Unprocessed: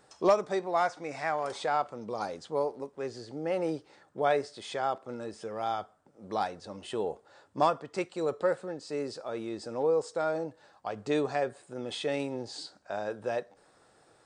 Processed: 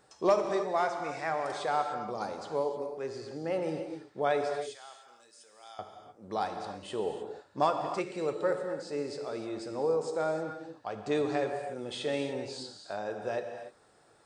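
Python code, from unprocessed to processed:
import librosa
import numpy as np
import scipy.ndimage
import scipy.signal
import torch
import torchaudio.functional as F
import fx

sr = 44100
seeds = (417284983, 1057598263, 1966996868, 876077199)

y = fx.differentiator(x, sr, at=(4.54, 5.79))
y = fx.rev_gated(y, sr, seeds[0], gate_ms=330, shape='flat', drr_db=5.0)
y = F.gain(torch.from_numpy(y), -2.0).numpy()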